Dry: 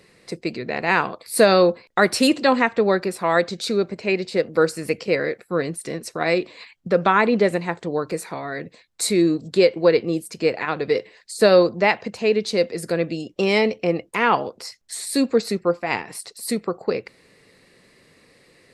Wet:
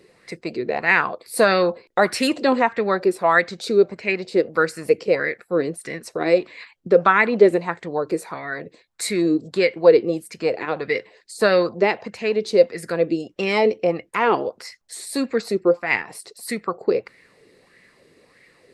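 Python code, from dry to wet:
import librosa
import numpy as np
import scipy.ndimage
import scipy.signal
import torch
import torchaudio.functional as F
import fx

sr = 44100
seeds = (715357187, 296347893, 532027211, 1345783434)

y = fx.bell_lfo(x, sr, hz=1.6, low_hz=340.0, high_hz=2100.0, db=12)
y = y * librosa.db_to_amplitude(-4.0)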